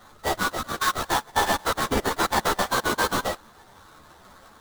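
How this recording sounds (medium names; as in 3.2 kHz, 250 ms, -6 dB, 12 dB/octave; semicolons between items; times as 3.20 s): aliases and images of a low sample rate 2.6 kHz, jitter 20%; a shimmering, thickened sound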